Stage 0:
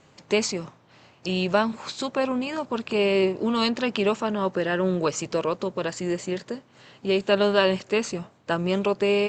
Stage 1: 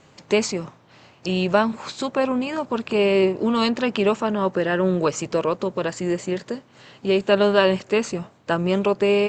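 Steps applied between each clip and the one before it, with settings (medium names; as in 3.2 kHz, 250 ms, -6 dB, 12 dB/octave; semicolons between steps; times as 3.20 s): dynamic bell 4.7 kHz, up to -4 dB, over -43 dBFS, Q 0.74; trim +3.5 dB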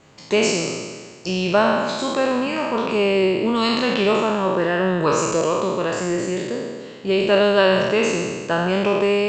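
spectral sustain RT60 1.58 s; trim -1 dB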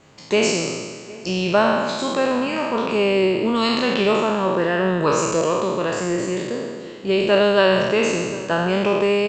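echo from a far wall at 130 m, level -19 dB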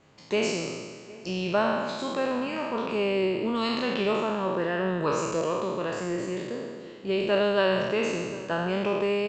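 distance through air 52 m; trim -7.5 dB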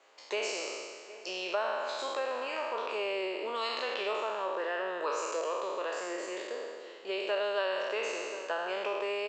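high-pass 460 Hz 24 dB/octave; compression 2:1, threshold -33 dBFS, peak gain reduction 7.5 dB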